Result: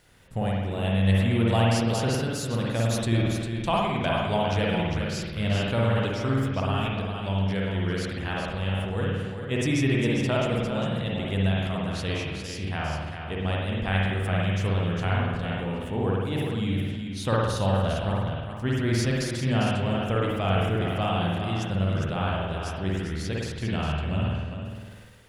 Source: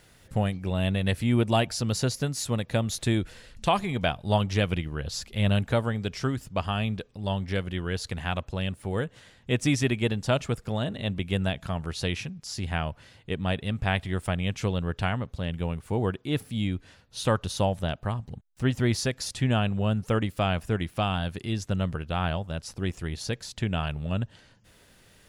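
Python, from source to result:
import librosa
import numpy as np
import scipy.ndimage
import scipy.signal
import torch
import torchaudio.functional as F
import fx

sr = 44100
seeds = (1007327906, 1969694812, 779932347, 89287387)

y = x + 10.0 ** (-7.5 / 20.0) * np.pad(x, (int(402 * sr / 1000.0), 0))[:len(x)]
y = fx.rev_spring(y, sr, rt60_s=1.1, pass_ms=(52,), chirp_ms=80, drr_db=-3.0)
y = fx.sustainer(y, sr, db_per_s=38.0)
y = y * librosa.db_to_amplitude(-4.0)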